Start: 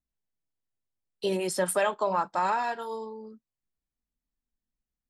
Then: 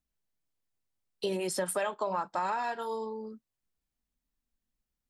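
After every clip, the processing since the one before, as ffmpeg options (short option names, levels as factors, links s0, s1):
-af "acompressor=threshold=0.02:ratio=2.5,volume=1.33"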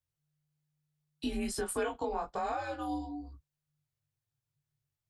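-af "flanger=delay=19.5:depth=2.8:speed=1.2,afreqshift=-150"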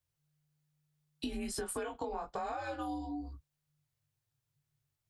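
-af "acompressor=threshold=0.0126:ratio=6,volume=1.41"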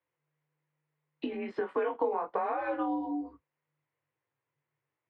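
-af "highpass=250,equalizer=f=320:t=q:w=4:g=7,equalizer=f=490:t=q:w=4:g=9,equalizer=f=1000:t=q:w=4:g=8,equalizer=f=2000:t=q:w=4:g=6,lowpass=f=2600:w=0.5412,lowpass=f=2600:w=1.3066,volume=1.41"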